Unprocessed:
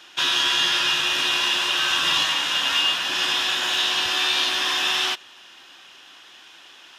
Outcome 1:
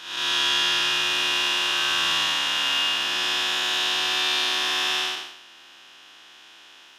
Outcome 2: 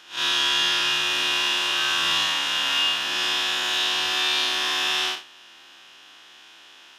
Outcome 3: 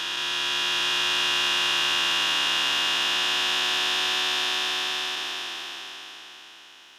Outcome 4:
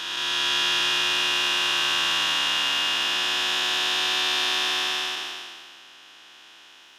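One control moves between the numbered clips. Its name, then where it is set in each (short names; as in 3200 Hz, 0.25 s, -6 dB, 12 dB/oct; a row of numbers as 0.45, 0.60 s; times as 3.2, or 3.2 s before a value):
time blur, width: 0.269, 0.105, 1.67, 0.675 s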